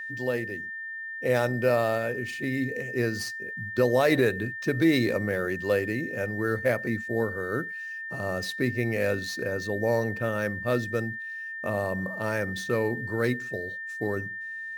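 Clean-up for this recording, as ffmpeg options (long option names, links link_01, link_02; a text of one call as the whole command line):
ffmpeg -i in.wav -af "bandreject=frequency=1800:width=30" out.wav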